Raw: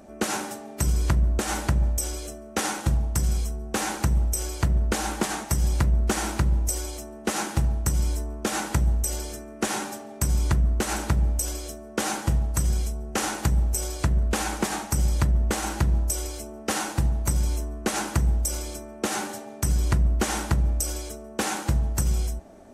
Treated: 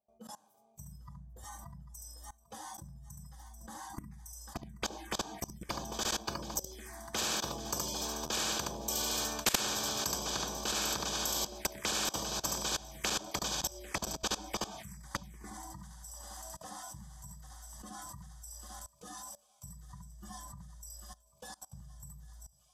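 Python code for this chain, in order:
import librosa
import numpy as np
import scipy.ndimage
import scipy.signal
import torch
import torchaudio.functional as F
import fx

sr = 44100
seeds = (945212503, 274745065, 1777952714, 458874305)

p1 = fx.doppler_pass(x, sr, speed_mps=6, closest_m=2.5, pass_at_s=9.52)
p2 = fx.notch_comb(p1, sr, f0_hz=1400.0)
p3 = p2 + 10.0 ** (-3.5 / 20.0) * np.pad(p2, (int(71 * sr / 1000.0), 0))[:len(p2)]
p4 = fx.dynamic_eq(p3, sr, hz=210.0, q=4.1, threshold_db=-59.0, ratio=4.0, max_db=6)
p5 = fx.noise_reduce_blind(p4, sr, reduce_db=19)
p6 = p5 + fx.echo_thinned(p5, sr, ms=796, feedback_pct=75, hz=770.0, wet_db=-12.5, dry=0)
p7 = fx.level_steps(p6, sr, step_db=23)
p8 = fx.high_shelf(p7, sr, hz=4800.0, db=-7.0)
p9 = fx.env_phaser(p8, sr, low_hz=300.0, high_hz=2000.0, full_db=-51.0)
p10 = fx.spectral_comp(p9, sr, ratio=10.0)
y = F.gain(torch.from_numpy(p10), 3.0).numpy()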